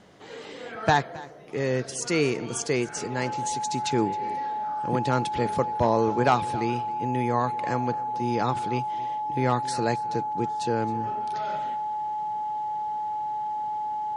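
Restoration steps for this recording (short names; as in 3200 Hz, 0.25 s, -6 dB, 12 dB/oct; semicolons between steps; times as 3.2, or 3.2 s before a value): notch 850 Hz, Q 30; inverse comb 0.268 s -19.5 dB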